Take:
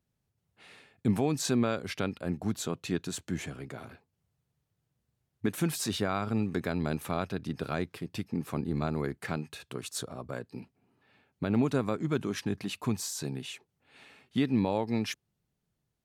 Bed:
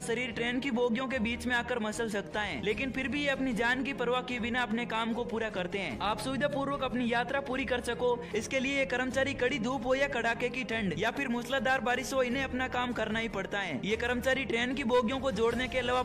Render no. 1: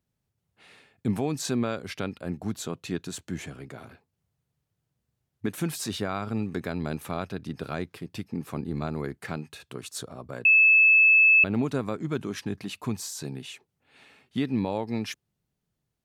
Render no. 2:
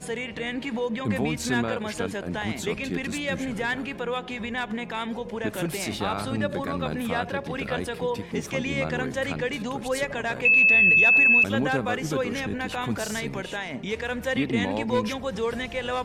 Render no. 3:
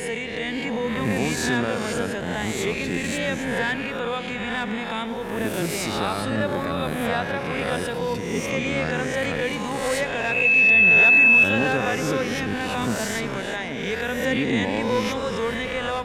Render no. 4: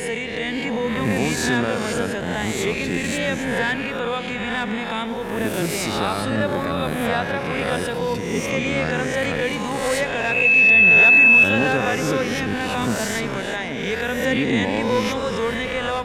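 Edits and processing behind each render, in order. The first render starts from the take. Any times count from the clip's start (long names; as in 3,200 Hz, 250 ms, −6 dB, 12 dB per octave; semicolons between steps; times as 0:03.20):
0:10.45–0:11.44: beep over 2,610 Hz −14 dBFS
mix in bed +1 dB
peak hold with a rise ahead of every peak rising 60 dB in 0.99 s; feedback echo with a low-pass in the loop 108 ms, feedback 81%, low-pass 3,400 Hz, level −14 dB
level +2.5 dB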